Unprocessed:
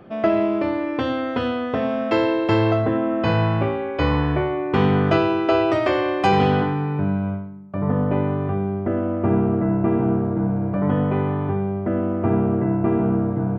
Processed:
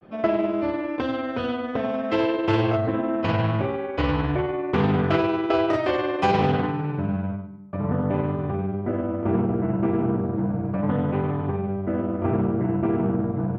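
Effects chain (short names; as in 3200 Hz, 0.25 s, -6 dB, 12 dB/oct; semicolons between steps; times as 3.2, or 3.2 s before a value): grains 0.1 s, grains 20/s, spray 18 ms, pitch spread up and down by 0 st; Doppler distortion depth 0.21 ms; gain -2 dB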